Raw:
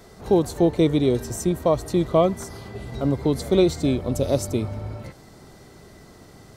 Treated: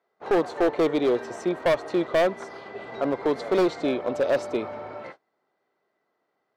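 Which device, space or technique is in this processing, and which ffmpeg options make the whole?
walkie-talkie: -filter_complex "[0:a]asettb=1/sr,asplit=3[a][b][c];[a]atrim=end=2.064[d];[b]atrim=start=2.06:end=2.79,asetpts=PTS-STARTPTS,afade=t=in:d=0.004:c=qsin,afade=t=out:st=0.726:d=0.004:c=qsin,equalizer=f=1.1k:t=o:w=1.5:g=-3.5[e];[c]atrim=start=2.786[f];[d][e]acrossfade=d=0.004:c1=hsin:c2=qsin[g];[g][f]acrossfade=d=0.004:c1=qsin:c2=hsin,highpass=530,lowpass=2.2k,asoftclip=type=hard:threshold=-23.5dB,agate=range=-28dB:threshold=-48dB:ratio=16:detection=peak,volume=6.5dB"

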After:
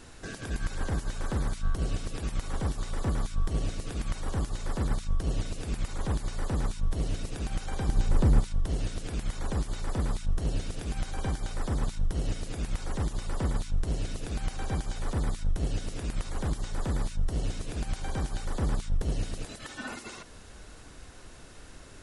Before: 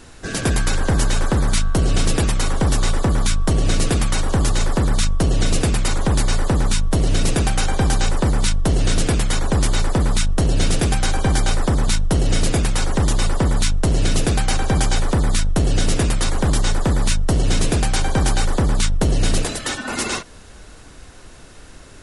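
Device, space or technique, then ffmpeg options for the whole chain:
de-esser from a sidechain: -filter_complex "[0:a]asettb=1/sr,asplit=3[a][b][c];[a]atrim=end=7.894[d];[b]atrim=start=7.89:end=8.4,asetpts=PTS-STARTPTS,afade=t=in:d=0.004:c=qsin,afade=t=out:st=0.506:d=0.004:c=qsin,lowshelf=f=460:g=9.5[e];[c]atrim=start=8.396[f];[d][e]acrossfade=d=0.004:c1=hsin:c2=qsin[g];[g][f]acrossfade=d=0.004:c1=qsin:c2=hsin,asplit=2[h][i];[i]highpass=5.6k,apad=whole_len=971171[j];[h][j]sidechaincompress=threshold=-43dB:ratio=8:attack=4.7:release=44,volume=-6.5dB"

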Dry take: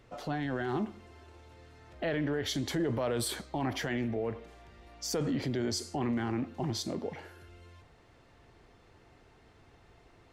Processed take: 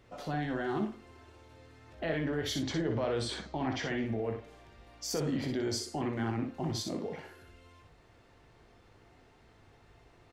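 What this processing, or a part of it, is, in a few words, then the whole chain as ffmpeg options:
slapback doubling: -filter_complex "[0:a]asplit=3[a][b][c];[b]adelay=19,volume=-9dB[d];[c]adelay=61,volume=-5.5dB[e];[a][d][e]amix=inputs=3:normalize=0,asettb=1/sr,asplit=3[f][g][h];[f]atrim=end=2.634[i];[g]atrim=start=2.63:end=4.06,asetpts=PTS-STARTPTS,afade=t=in:d=0.004:c=qsin,afade=t=out:st=1.426:d=0.004:c=qsin,lowpass=f=6.7k:w=0.5412,lowpass=f=6.7k:w=1.3066[j];[h]atrim=start=4.056[k];[i][j]acrossfade=d=0.004:c1=hsin:c2=qsin[l];[l][k]acrossfade=d=0.004:c1=qsin:c2=hsin,volume=-2dB"

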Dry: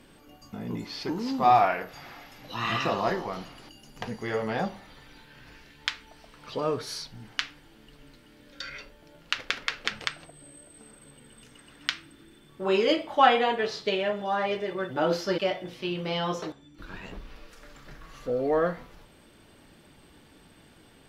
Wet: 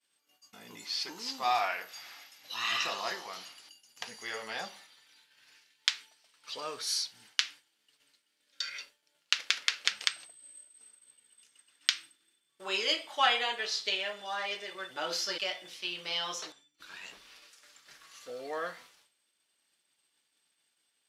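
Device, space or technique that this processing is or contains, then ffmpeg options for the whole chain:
piezo pickup straight into a mixer: -af "agate=range=-33dB:threshold=-43dB:ratio=3:detection=peak,lowpass=8.8k,aderivative,volume=9dB"

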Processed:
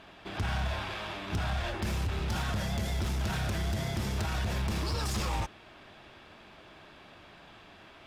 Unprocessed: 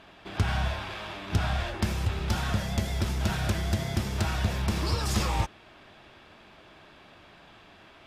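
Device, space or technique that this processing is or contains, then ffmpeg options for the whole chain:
limiter into clipper: -af "alimiter=limit=-23dB:level=0:latency=1:release=29,asoftclip=type=hard:threshold=-26.5dB"

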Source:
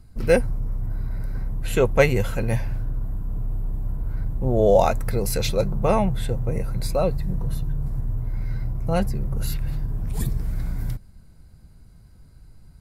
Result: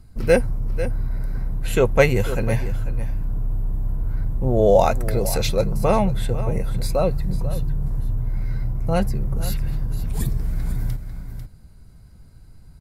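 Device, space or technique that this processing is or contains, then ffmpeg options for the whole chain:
ducked delay: -filter_complex "[0:a]asplit=3[a][b][c];[b]adelay=495,volume=-8dB[d];[c]apad=whole_len=586554[e];[d][e]sidechaincompress=threshold=-26dB:ratio=8:attack=8.3:release=175[f];[a][f]amix=inputs=2:normalize=0,volume=1.5dB"

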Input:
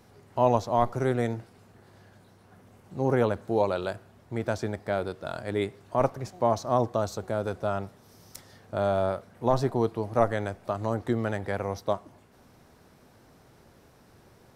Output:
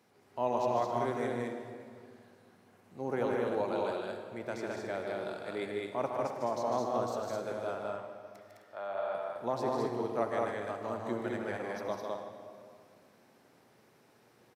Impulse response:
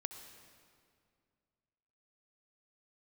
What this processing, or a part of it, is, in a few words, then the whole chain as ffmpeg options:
stadium PA: -filter_complex "[0:a]asettb=1/sr,asplit=3[a][b][c];[a]atrim=end=7.754[d];[b]atrim=start=7.75:end=9.15,asetpts=PTS-STARTPTS,afade=t=in:d=0.004:c=qsin,afade=t=out:st=1.396:d=0.004:c=qsin,acrossover=split=540 3100:gain=0.141 1 0.178[e][f][g];[e][f][g]amix=inputs=3:normalize=0[h];[c]atrim=start=9.146[i];[d][h]acrossfade=d=0.004:c1=hsin:c2=qsin[j];[j][i]acrossfade=d=0.004:c1=qsin:c2=hsin,highpass=190,equalizer=f=2.3k:t=o:w=0.74:g=3.5,aecho=1:1:151.6|209.9|259.5:0.562|0.794|0.316[k];[1:a]atrim=start_sample=2205[l];[k][l]afir=irnorm=-1:irlink=0,volume=-7dB"

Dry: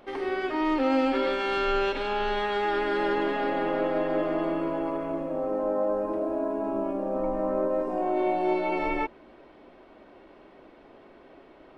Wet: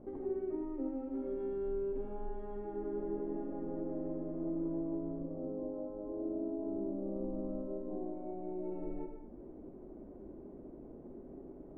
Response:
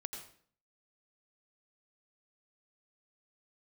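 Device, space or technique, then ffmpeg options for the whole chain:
television next door: -filter_complex "[0:a]acompressor=threshold=-40dB:ratio=4,lowpass=290[a];[1:a]atrim=start_sample=2205[b];[a][b]afir=irnorm=-1:irlink=0,volume=9.5dB"

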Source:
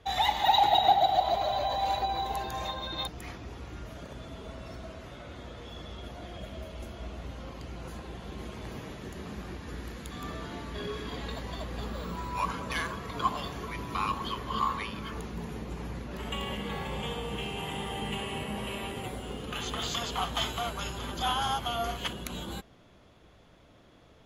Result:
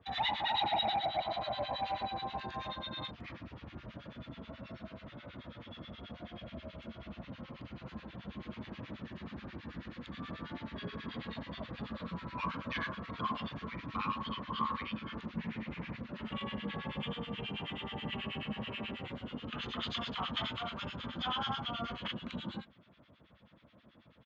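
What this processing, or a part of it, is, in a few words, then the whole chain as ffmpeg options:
guitar amplifier with harmonic tremolo: -filter_complex "[0:a]asplit=2[a][b];[b]adelay=41,volume=-5dB[c];[a][c]amix=inputs=2:normalize=0,acrossover=split=1300[d][e];[d]aeval=exprs='val(0)*(1-1/2+1/2*cos(2*PI*9.3*n/s))':c=same[f];[e]aeval=exprs='val(0)*(1-1/2-1/2*cos(2*PI*9.3*n/s))':c=same[g];[f][g]amix=inputs=2:normalize=0,asoftclip=type=tanh:threshold=-19.5dB,highpass=88,equalizer=f=220:t=q:w=4:g=5,equalizer=f=410:t=q:w=4:g=-9,equalizer=f=760:t=q:w=4:g=-6,lowpass=f=3.9k:w=0.5412,lowpass=f=3.9k:w=1.3066,asettb=1/sr,asplit=3[h][i][j];[h]atrim=end=15.374[k];[i]atrim=start=15.37:end=15.97,asetpts=PTS-STARTPTS,afade=t=in:d=0.004:c=qsin,afade=t=out:st=0.596:d=0.004:c=qsin,equalizer=f=2.2k:t=o:w=0.91:g=10[l];[j]atrim=start=15.966[m];[k][l]acrossfade=d=0.004:c1=hsin:c2=qsin[n];[n][m]acrossfade=d=0.004:c1=qsin:c2=hsin"

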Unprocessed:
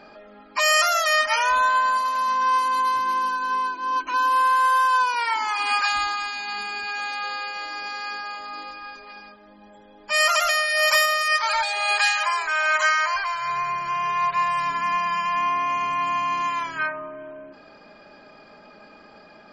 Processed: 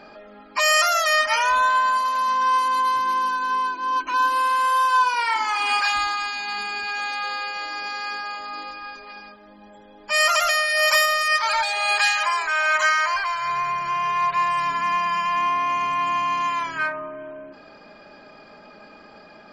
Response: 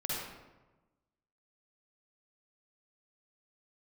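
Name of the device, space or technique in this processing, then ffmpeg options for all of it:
parallel distortion: -filter_complex "[0:a]asettb=1/sr,asplit=3[a][b][c];[a]atrim=end=4.154[d];[b]atrim=start=4.15:end=5.93,asetpts=PTS-STARTPTS,afade=t=in:d=0.004:c=qsin,afade=t=out:st=1.776:d=0.004:c=qsin,asplit=2[e][f];[f]adelay=46,volume=-8dB[g];[e][g]amix=inputs=2:normalize=0,atrim=end_sample=78498[h];[c]atrim=start=5.926[i];[d][h]acrossfade=d=0.004:c1=hsin:c2=qsin[j];[j][i]acrossfade=d=0.004:c1=qsin:c2=hsin,asplit=2[k][l];[l]asoftclip=type=hard:threshold=-26.5dB,volume=-12dB[m];[k][m]amix=inputs=2:normalize=0"

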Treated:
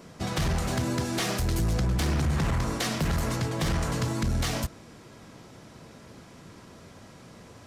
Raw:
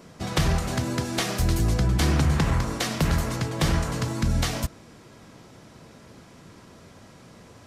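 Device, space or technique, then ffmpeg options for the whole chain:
limiter into clipper: -af "alimiter=limit=-17dB:level=0:latency=1:release=27,asoftclip=type=hard:threshold=-21.5dB"

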